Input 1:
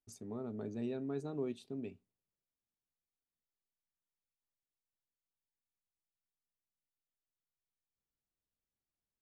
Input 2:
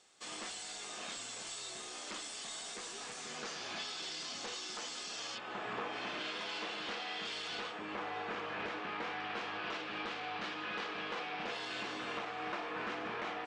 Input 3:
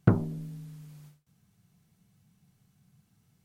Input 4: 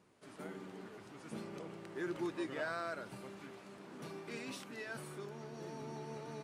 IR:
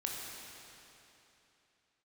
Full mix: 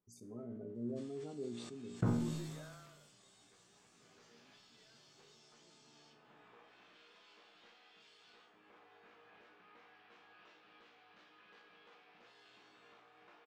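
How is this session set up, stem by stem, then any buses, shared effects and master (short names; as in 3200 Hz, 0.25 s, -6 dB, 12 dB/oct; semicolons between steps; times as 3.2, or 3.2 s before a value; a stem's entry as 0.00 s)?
+1.0 dB, 0.00 s, no send, spectral gate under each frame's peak -20 dB strong
-16.0 dB, 0.75 s, no send, dry
-6.5 dB, 1.95 s, no send, dry
-15.0 dB, 0.00 s, no send, LPF 1400 Hz 6 dB/oct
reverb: off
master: resonator 59 Hz, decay 0.45 s, harmonics all, mix 80%; sustainer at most 35 dB/s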